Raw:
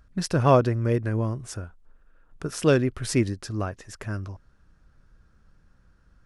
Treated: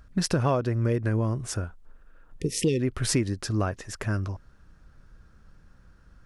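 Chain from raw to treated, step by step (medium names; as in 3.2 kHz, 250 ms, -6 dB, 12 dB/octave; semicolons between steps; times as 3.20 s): spectral replace 2.40–2.78 s, 520–1800 Hz before; compression 8:1, threshold -25 dBFS, peak gain reduction 13 dB; trim +4.5 dB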